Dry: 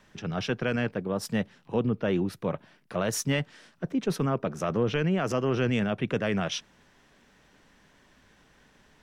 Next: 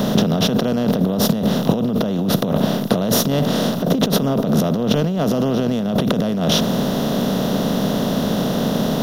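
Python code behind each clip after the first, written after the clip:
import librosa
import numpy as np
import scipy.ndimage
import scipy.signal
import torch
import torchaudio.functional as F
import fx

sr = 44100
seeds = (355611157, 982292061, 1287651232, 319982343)

y = fx.bin_compress(x, sr, power=0.4)
y = fx.curve_eq(y, sr, hz=(120.0, 210.0, 350.0, 620.0, 1000.0, 2300.0, 3800.0, 8000.0, 14000.0), db=(0, 9, -1, 5, 0, -14, 4, -11, 8))
y = fx.over_compress(y, sr, threshold_db=-24.0, ratio=-1.0)
y = y * 10.0 ** (7.0 / 20.0)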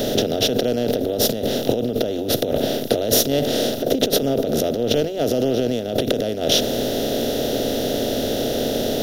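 y = fx.fixed_phaser(x, sr, hz=440.0, stages=4)
y = y * 10.0 ** (2.5 / 20.0)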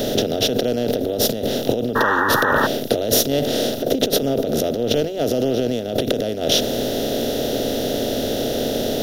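y = fx.spec_paint(x, sr, seeds[0], shape='noise', start_s=1.95, length_s=0.72, low_hz=780.0, high_hz=1900.0, level_db=-19.0)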